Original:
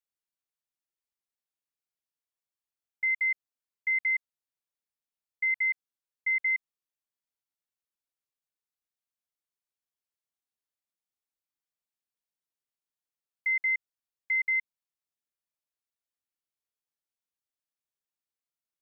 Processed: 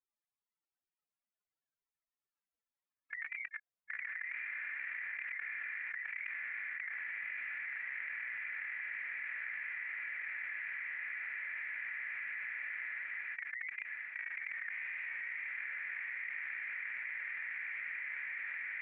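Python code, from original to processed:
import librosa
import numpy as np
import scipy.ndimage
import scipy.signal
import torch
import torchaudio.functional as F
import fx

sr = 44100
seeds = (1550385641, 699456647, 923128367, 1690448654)

p1 = fx.block_reorder(x, sr, ms=108.0, group=4)
p2 = fx.level_steps(p1, sr, step_db=15)
p3 = fx.wow_flutter(p2, sr, seeds[0], rate_hz=2.1, depth_cents=130.0)
p4 = fx.spec_gate(p3, sr, threshold_db=-25, keep='weak')
p5 = fx.lowpass_res(p4, sr, hz=1800.0, q=1.7)
p6 = p5 + fx.echo_diffused(p5, sr, ms=1046, feedback_pct=63, wet_db=-8.5, dry=0)
p7 = fx.env_flatten(p6, sr, amount_pct=100)
y = F.gain(torch.from_numpy(p7), 8.5).numpy()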